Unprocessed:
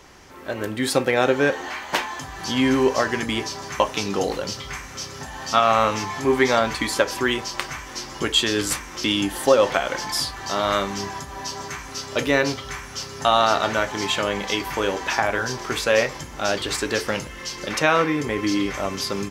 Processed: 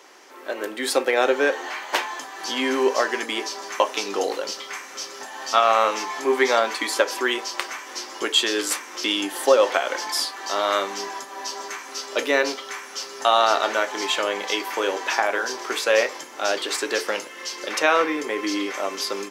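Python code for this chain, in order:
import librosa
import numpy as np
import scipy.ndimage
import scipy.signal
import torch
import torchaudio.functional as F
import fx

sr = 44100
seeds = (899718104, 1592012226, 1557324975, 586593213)

y = scipy.signal.sosfilt(scipy.signal.butter(4, 320.0, 'highpass', fs=sr, output='sos'), x)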